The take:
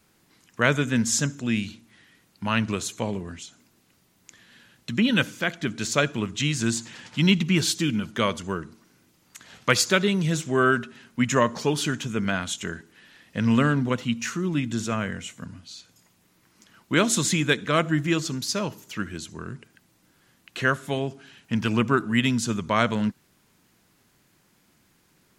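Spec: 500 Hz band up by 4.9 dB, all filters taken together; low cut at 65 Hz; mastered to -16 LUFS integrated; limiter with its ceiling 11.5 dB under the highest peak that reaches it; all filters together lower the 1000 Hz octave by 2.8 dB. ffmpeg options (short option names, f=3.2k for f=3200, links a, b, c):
-af "highpass=65,equalizer=f=500:t=o:g=7.5,equalizer=f=1k:t=o:g=-5.5,volume=10.5dB,alimiter=limit=-4dB:level=0:latency=1"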